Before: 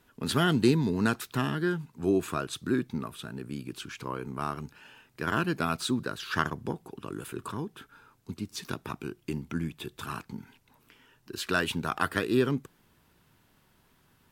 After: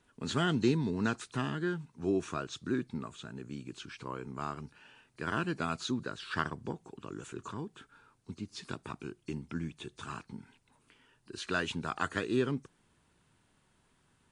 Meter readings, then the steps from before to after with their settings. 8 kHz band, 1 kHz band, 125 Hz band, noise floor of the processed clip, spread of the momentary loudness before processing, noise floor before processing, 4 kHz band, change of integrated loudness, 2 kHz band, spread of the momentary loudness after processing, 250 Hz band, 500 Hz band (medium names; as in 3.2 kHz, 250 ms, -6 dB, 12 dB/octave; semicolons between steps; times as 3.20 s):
-6.5 dB, -5.0 dB, -5.0 dB, -71 dBFS, 14 LU, -66 dBFS, -5.5 dB, -5.0 dB, -5.0 dB, 14 LU, -5.0 dB, -5.0 dB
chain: knee-point frequency compression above 4 kHz 1.5:1; trim -5 dB